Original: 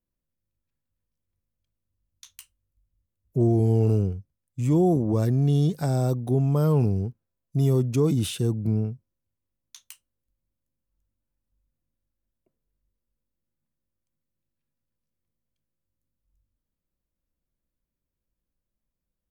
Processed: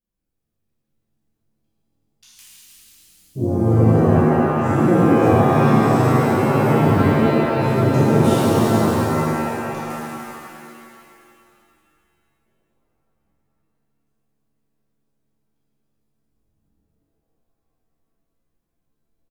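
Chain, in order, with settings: harmony voices -4 st -6 dB; frequency-shifting echo 296 ms, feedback 47%, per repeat +140 Hz, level -8 dB; pitch-shifted reverb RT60 2.4 s, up +7 st, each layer -2 dB, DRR -10 dB; trim -8 dB

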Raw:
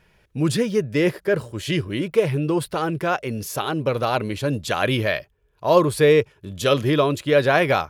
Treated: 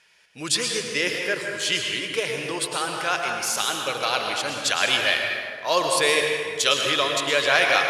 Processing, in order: frequency weighting ITU-R 468; plate-style reverb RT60 2 s, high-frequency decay 0.55×, pre-delay 95 ms, DRR 1.5 dB; trim -3 dB

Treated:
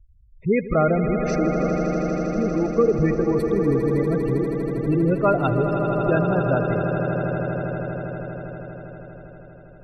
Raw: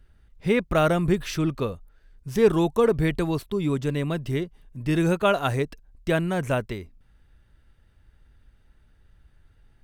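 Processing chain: spectral gate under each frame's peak -15 dB strong; 1.06–2.78 s: static phaser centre 640 Hz, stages 8; echo with a slow build-up 80 ms, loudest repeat 8, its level -11 dB; trim +2 dB

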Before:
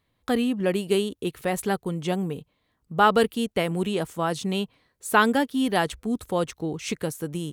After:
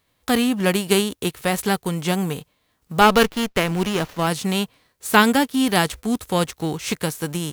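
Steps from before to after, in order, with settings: formants flattened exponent 0.6; 3.01–4.27 s: sliding maximum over 5 samples; trim +4.5 dB

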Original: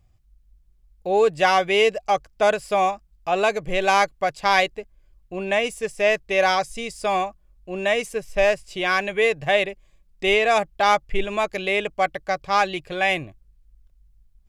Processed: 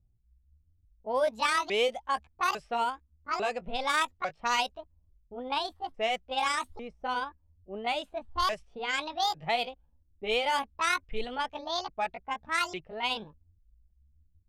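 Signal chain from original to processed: sawtooth pitch modulation +11 st, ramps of 849 ms; level-controlled noise filter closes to 370 Hz, open at -16.5 dBFS; trim -8.5 dB

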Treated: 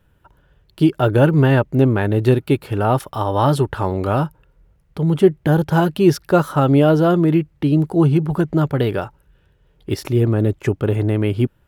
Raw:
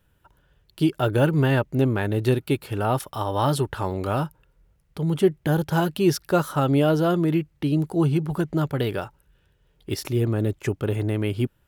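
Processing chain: treble shelf 2.8 kHz -8 dB; trim +6.5 dB

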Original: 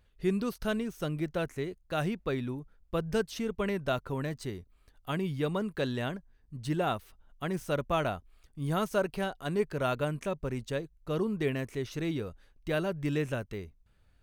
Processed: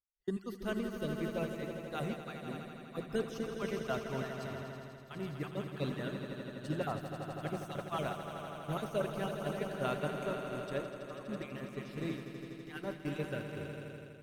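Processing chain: random holes in the spectrogram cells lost 30%; hum notches 60/120/180 Hz; on a send: echo with a slow build-up 82 ms, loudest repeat 5, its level -8 dB; on the sum: expander -28 dBFS; trim -5.5 dB

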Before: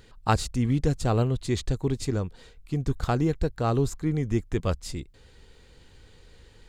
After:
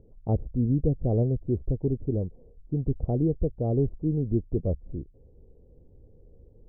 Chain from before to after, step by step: steep low-pass 620 Hz 36 dB/octave

